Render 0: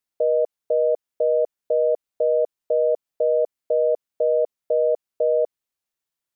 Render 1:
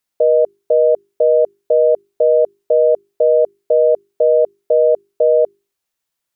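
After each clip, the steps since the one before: hum notches 50/100/150/200/250/300/350/400 Hz; trim +7.5 dB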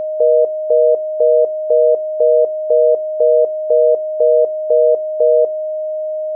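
whistle 620 Hz -18 dBFS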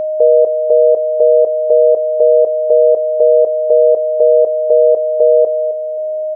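feedback delay 264 ms, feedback 31%, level -13 dB; trim +3 dB

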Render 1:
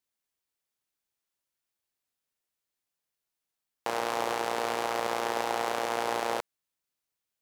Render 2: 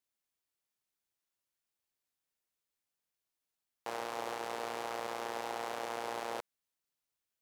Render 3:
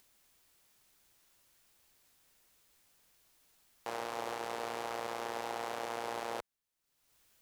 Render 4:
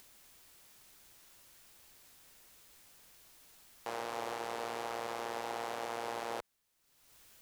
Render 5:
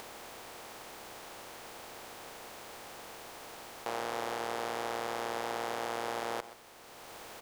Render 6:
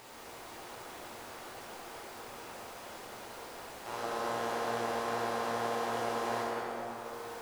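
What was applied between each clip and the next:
peak limiter -22 dBFS, peak gain reduction 8.5 dB; trim -3 dB
bass shelf 70 Hz +8 dB; upward compressor, threshold -52 dBFS
peak limiter -34.5 dBFS, peak gain reduction 10 dB; trim +8.5 dB
spectral levelling over time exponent 0.4; delay 128 ms -15.5 dB; trim +1 dB
chorus 2.5 Hz, delay 16.5 ms, depth 5.4 ms; plate-style reverb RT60 4.8 s, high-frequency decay 0.45×, DRR -8.5 dB; trim -4.5 dB

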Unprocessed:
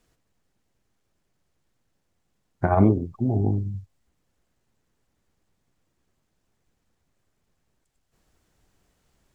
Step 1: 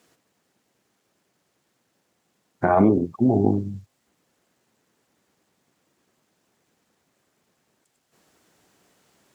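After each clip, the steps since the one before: high-pass 200 Hz 12 dB/octave; loudness maximiser +15 dB; trim -6.5 dB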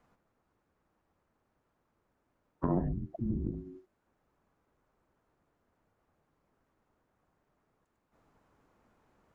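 three-band isolator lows -17 dB, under 470 Hz, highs -22 dB, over 2 kHz; compression 2:1, threshold -33 dBFS, peak gain reduction 9.5 dB; frequency shift -470 Hz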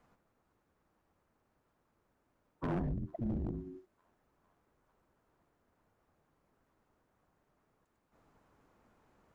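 in parallel at -3.5 dB: saturation -35 dBFS, distortion -7 dB; on the sum: feedback echo behind a high-pass 451 ms, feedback 77%, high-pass 1.6 kHz, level -22 dB; overload inside the chain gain 27 dB; trim -4 dB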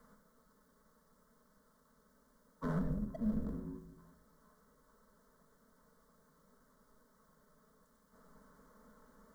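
companding laws mixed up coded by mu; static phaser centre 510 Hz, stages 8; simulated room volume 2100 m³, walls furnished, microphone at 1.5 m; trim -2 dB

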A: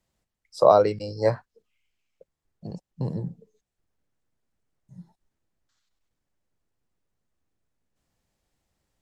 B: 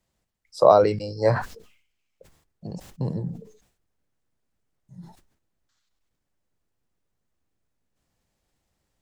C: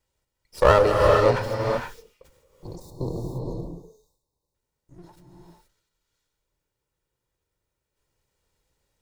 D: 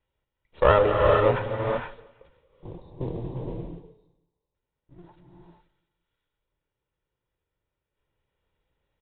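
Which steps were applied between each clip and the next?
decay stretcher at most 95 dB/s; trim +1 dB
comb filter that takes the minimum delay 2.1 ms; spectral selection erased 2.54–4.55 s, 1.2–3.5 kHz; gated-style reverb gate 500 ms rising, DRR 0.5 dB
modulation noise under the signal 23 dB; feedback delay 169 ms, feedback 46%, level -22.5 dB; resampled via 8 kHz; trim -2 dB

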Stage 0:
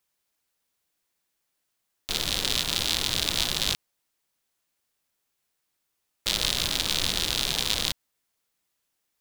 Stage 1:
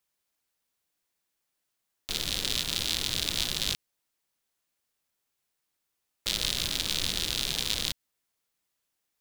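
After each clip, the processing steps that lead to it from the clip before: dynamic bell 890 Hz, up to -5 dB, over -46 dBFS, Q 0.89; trim -3 dB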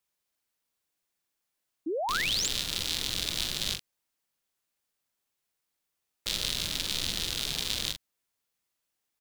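doubling 44 ms -7 dB; painted sound rise, 1.86–2.48 s, 290–8000 Hz -28 dBFS; trim -2.5 dB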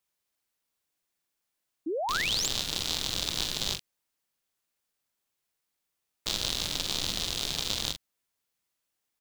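tracing distortion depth 0.035 ms

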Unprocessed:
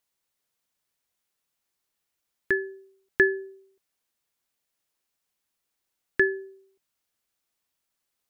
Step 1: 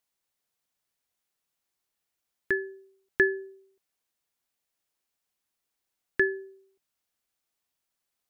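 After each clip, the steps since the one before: peaking EQ 740 Hz +2.5 dB 0.21 oct; trim -2.5 dB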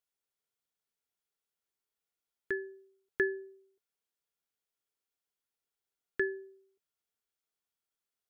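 small resonant body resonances 430/1400/3300 Hz, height 8 dB; trim -9 dB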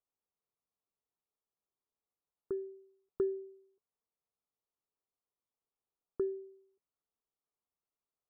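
steep low-pass 1.3 kHz 96 dB/octave

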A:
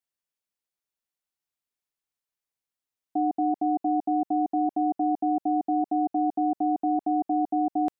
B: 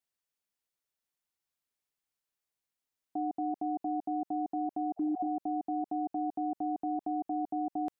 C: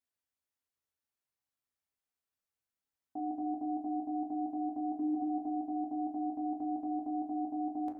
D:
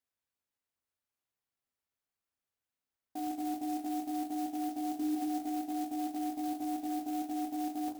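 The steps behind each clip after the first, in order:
spectral replace 5.00–5.24 s, 450–920 Hz both; peak limiter -26.5 dBFS, peak gain reduction 8.5 dB
reverberation RT60 1.0 s, pre-delay 6 ms, DRR 0 dB; trim -6 dB
sampling jitter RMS 0.054 ms

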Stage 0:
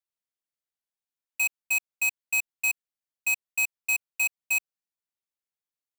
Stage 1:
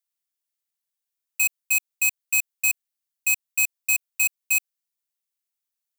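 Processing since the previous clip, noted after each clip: tilt EQ +3 dB/octave; trim -2 dB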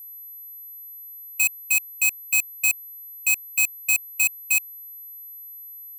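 whistle 12 kHz -39 dBFS; trim +1 dB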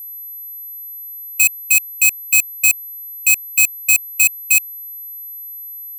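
tilt shelf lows -5 dB, about 1.2 kHz; trim +3.5 dB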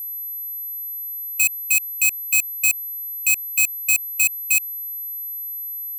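peak limiter -8 dBFS, peak gain reduction 7 dB; trim +2 dB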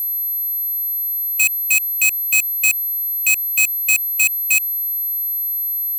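waveshaping leveller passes 2; trim +1 dB

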